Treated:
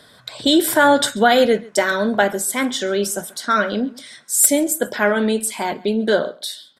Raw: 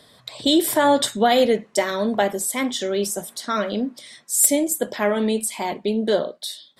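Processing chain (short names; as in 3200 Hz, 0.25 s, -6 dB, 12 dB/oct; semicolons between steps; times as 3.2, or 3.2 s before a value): bell 1500 Hz +12.5 dB 0.24 oct; echo 0.136 s -23 dB; gain +2.5 dB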